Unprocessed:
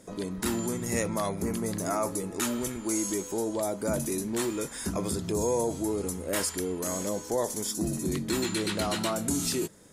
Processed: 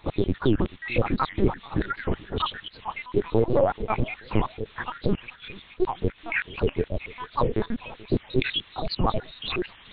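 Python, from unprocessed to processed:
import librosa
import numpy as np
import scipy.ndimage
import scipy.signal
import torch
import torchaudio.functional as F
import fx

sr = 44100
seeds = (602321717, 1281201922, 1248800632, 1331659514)

p1 = fx.spec_dropout(x, sr, seeds[0], share_pct=83)
p2 = scipy.signal.sosfilt(scipy.signal.butter(2, 140.0, 'highpass', fs=sr, output='sos'), p1)
p3 = fx.low_shelf(p2, sr, hz=300.0, db=4.5)
p4 = fx.over_compress(p3, sr, threshold_db=-40.0, ratio=-1.0)
p5 = p3 + F.gain(torch.from_numpy(p4), 0.5).numpy()
p6 = fx.dmg_noise_colour(p5, sr, seeds[1], colour='blue', level_db=-45.0)
p7 = fx.volume_shaper(p6, sr, bpm=157, per_beat=1, depth_db=-9, release_ms=63.0, shape='slow start')
p8 = fx.lpc_vocoder(p7, sr, seeds[2], excitation='pitch_kept', order=8)
p9 = p8 + fx.echo_feedback(p8, sr, ms=433, feedback_pct=32, wet_db=-21.0, dry=0)
p10 = fx.record_warp(p9, sr, rpm=78.0, depth_cents=250.0)
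y = F.gain(torch.from_numpy(p10), 8.5).numpy()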